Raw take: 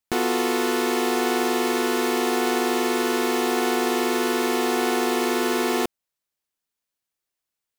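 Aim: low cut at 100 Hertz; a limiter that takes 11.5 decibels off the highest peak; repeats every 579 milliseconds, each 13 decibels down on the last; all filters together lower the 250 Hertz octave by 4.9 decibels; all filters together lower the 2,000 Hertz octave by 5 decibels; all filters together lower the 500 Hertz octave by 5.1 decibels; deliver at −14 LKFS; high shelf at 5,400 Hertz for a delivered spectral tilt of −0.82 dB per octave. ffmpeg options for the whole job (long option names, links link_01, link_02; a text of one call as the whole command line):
ffmpeg -i in.wav -af "highpass=100,equalizer=frequency=250:width_type=o:gain=-4,equalizer=frequency=500:width_type=o:gain=-5,equalizer=frequency=2000:width_type=o:gain=-7.5,highshelf=frequency=5400:gain=8.5,alimiter=limit=-17.5dB:level=0:latency=1,aecho=1:1:579|1158|1737:0.224|0.0493|0.0108,volume=15.5dB" out.wav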